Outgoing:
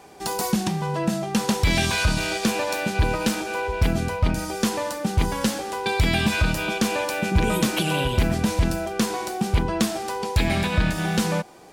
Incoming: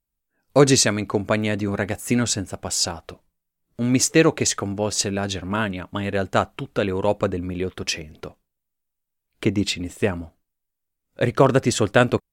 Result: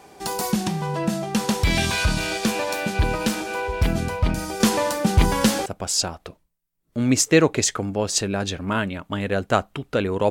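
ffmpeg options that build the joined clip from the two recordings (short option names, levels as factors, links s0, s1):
-filter_complex "[0:a]asettb=1/sr,asplit=3[s0][s1][s2];[s0]atrim=end=4.604[s3];[s1]atrim=start=4.6:end=5.66,asetpts=PTS-STARTPTS,afade=t=in:d=0.004:c=qsin,afade=t=out:st=1.056:d=0.004:c=qsin,acontrast=23[s4];[s2]atrim=start=5.656[s5];[s3][s4]acrossfade=d=0.004:c1=hsin:c2=qsin[s6];[s6][s5]acrossfade=d=0.004:c1=qsin:c2=hsin,apad=whole_dur=10.3,atrim=end=10.3,atrim=end=5.662[s7];[1:a]atrim=start=2.488:end=7.13[s8];[s7][s8]acrossfade=d=0.004:c1=hsin:c2=hsin"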